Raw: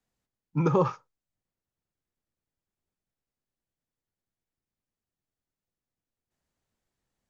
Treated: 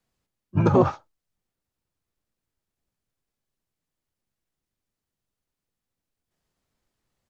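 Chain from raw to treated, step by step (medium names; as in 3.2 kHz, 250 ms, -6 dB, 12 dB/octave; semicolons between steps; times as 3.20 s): harmony voices -7 st -1 dB, +3 st -12 dB; trim +2 dB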